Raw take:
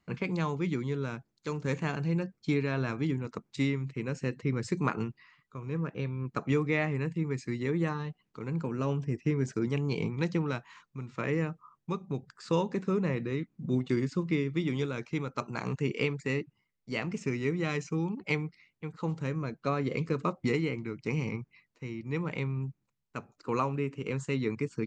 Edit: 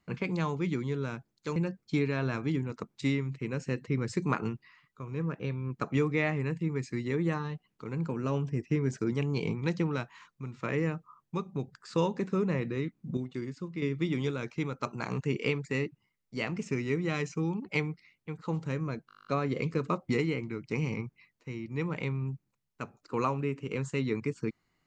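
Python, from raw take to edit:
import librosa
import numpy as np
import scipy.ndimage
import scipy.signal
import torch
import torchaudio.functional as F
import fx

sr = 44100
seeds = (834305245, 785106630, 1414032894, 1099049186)

y = fx.edit(x, sr, fx.cut(start_s=1.56, length_s=0.55),
    fx.clip_gain(start_s=13.72, length_s=0.65, db=-8.0),
    fx.stutter(start_s=19.62, slice_s=0.02, count=11), tone=tone)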